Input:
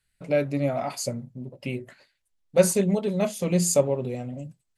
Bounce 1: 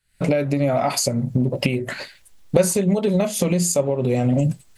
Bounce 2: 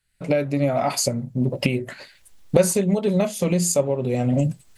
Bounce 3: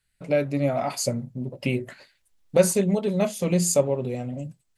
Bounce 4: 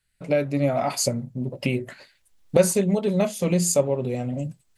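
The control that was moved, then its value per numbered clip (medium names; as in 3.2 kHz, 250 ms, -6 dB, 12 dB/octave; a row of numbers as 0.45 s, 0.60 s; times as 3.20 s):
recorder AGC, rising by: 82 dB/s, 34 dB/s, 5.4 dB/s, 13 dB/s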